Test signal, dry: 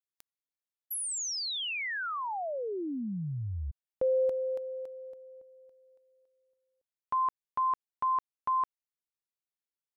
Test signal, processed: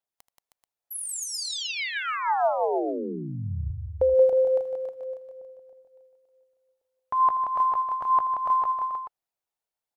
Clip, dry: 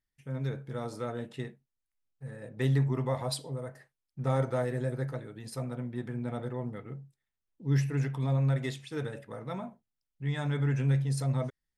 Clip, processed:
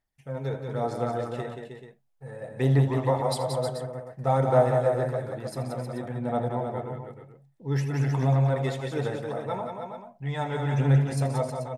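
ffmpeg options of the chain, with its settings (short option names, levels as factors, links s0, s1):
-filter_complex "[0:a]equalizer=f=730:t=o:w=0.95:g=11.5,aphaser=in_gain=1:out_gain=1:delay=2.3:decay=0.38:speed=1.1:type=sinusoidal,asplit=2[s0][s1];[s1]aecho=0:1:80|179|314|434:0.178|0.501|0.422|0.266[s2];[s0][s2]amix=inputs=2:normalize=0"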